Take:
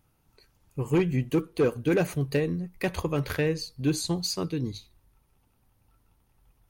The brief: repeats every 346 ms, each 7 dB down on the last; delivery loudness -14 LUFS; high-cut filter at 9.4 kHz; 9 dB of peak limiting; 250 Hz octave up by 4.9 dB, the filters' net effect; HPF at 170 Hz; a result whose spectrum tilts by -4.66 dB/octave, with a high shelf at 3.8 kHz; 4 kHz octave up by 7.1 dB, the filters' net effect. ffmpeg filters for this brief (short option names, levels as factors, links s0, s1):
-af "highpass=170,lowpass=9400,equalizer=f=250:t=o:g=8.5,highshelf=f=3800:g=6.5,equalizer=f=4000:t=o:g=4,alimiter=limit=0.119:level=0:latency=1,aecho=1:1:346|692|1038|1384|1730:0.447|0.201|0.0905|0.0407|0.0183,volume=5.31"